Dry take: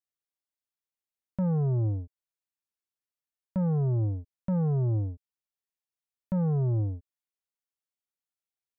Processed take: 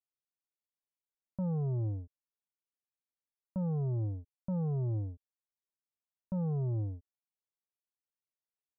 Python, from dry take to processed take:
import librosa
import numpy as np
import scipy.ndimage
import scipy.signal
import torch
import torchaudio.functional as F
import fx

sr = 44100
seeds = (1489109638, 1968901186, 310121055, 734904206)

y = scipy.signal.sosfilt(scipy.signal.butter(4, 1200.0, 'lowpass', fs=sr, output='sos'), x)
y = y * 10.0 ** (-6.5 / 20.0)